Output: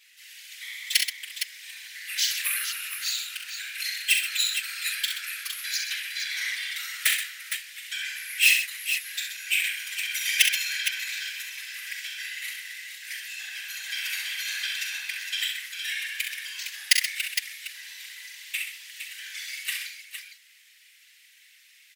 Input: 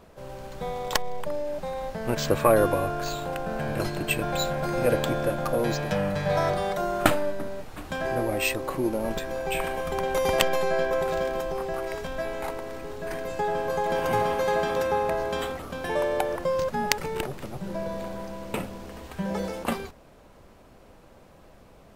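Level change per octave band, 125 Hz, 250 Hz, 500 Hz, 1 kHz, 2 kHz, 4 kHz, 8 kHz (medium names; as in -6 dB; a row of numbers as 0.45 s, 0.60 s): under -40 dB, under -40 dB, under -40 dB, -24.5 dB, +5.5 dB, +9.0 dB, +9.0 dB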